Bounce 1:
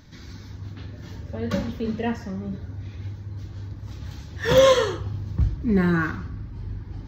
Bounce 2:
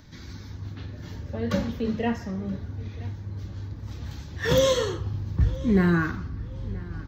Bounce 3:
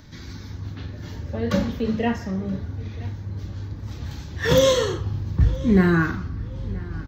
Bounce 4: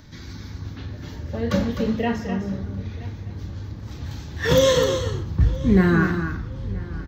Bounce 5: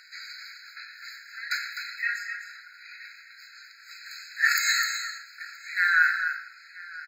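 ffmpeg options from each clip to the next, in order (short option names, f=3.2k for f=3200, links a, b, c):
-filter_complex "[0:a]acrossover=split=410|3300[a][b][c];[b]alimiter=limit=-20dB:level=0:latency=1:release=490[d];[a][d][c]amix=inputs=3:normalize=0,asplit=2[e][f];[f]adelay=975,lowpass=f=4.5k:p=1,volume=-20dB,asplit=2[g][h];[h]adelay=975,lowpass=f=4.5k:p=1,volume=0.28[i];[e][g][i]amix=inputs=3:normalize=0"
-filter_complex "[0:a]asplit=2[a][b];[b]adelay=37,volume=-12dB[c];[a][c]amix=inputs=2:normalize=0,volume=3.5dB"
-af "aecho=1:1:254:0.398"
-af "aecho=1:1:114:0.188,afftfilt=real='re*eq(mod(floor(b*sr/1024/1300),2),1)':imag='im*eq(mod(floor(b*sr/1024/1300),2),1)':win_size=1024:overlap=0.75,volume=7dB"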